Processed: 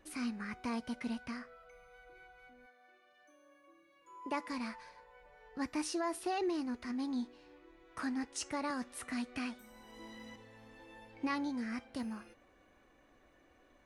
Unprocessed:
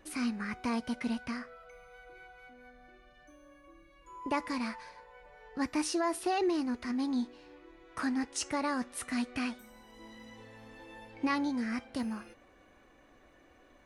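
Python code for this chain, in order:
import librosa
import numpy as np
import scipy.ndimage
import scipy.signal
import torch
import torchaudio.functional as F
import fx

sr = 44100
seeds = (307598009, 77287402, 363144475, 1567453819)

y = fx.highpass(x, sr, hz=fx.line((2.65, 560.0), (4.49, 180.0)), slope=12, at=(2.65, 4.49), fade=0.02)
y = fx.band_squash(y, sr, depth_pct=40, at=(8.7, 10.36))
y = y * librosa.db_to_amplitude(-5.0)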